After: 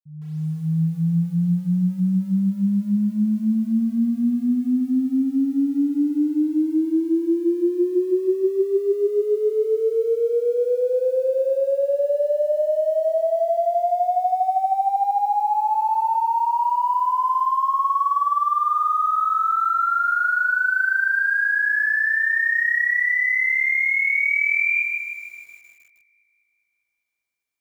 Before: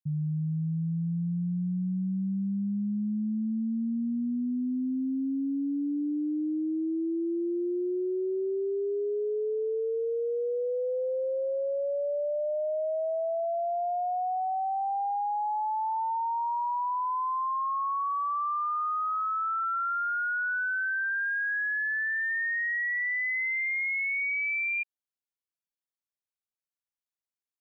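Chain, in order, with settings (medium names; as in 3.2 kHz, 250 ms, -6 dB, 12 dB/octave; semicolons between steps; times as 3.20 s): fade-in on the opening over 0.77 s; feedback echo behind a high-pass 200 ms, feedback 63%, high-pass 2.2 kHz, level -16.5 dB; bit-crushed delay 155 ms, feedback 55%, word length 10-bit, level -4.5 dB; trim +7.5 dB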